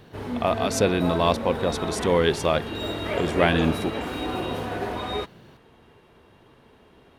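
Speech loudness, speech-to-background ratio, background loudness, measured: -24.0 LUFS, 6.0 dB, -30.0 LUFS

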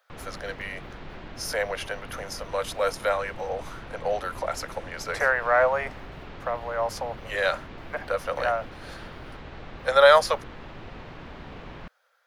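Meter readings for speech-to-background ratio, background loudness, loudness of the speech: 16.5 dB, -42.5 LUFS, -26.0 LUFS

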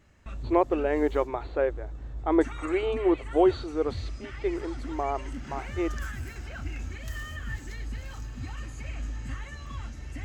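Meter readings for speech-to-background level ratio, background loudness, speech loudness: 11.0 dB, -39.0 LUFS, -28.0 LUFS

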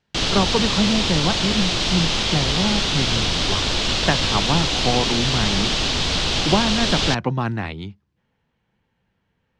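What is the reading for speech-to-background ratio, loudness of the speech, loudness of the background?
-4.5 dB, -24.5 LUFS, -20.0 LUFS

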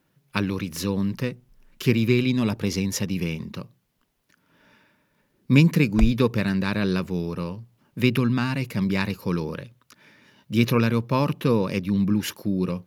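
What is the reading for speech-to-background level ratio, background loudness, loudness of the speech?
6.5 dB, -30.5 LUFS, -24.0 LUFS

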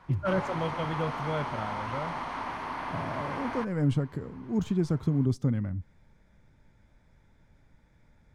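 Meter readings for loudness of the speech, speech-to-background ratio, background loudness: -31.5 LUFS, 4.0 dB, -35.5 LUFS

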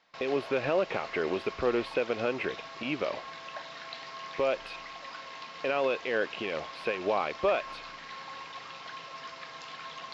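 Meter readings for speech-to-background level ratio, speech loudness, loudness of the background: 11.0 dB, -31.5 LUFS, -42.5 LUFS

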